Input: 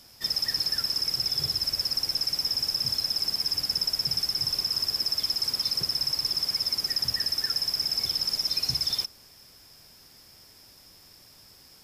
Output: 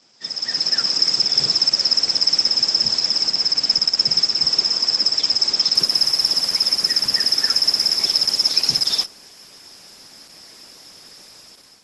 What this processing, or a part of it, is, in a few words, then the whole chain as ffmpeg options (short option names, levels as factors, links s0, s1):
video call: -af "highpass=f=170:w=0.5412,highpass=f=170:w=1.3066,dynaudnorm=f=210:g=5:m=3.76" -ar 48000 -c:a libopus -b:a 12k